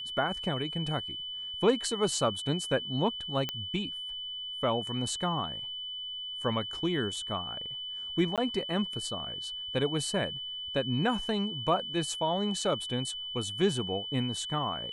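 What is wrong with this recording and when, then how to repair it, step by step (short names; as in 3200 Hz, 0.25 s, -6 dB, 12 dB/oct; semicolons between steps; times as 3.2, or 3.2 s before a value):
tone 3000 Hz -36 dBFS
3.49 pop -17 dBFS
8.36–8.38 gap 17 ms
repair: de-click; notch 3000 Hz, Q 30; interpolate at 8.36, 17 ms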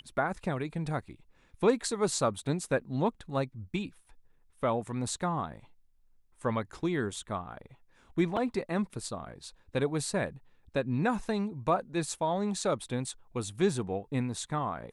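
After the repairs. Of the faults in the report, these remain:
none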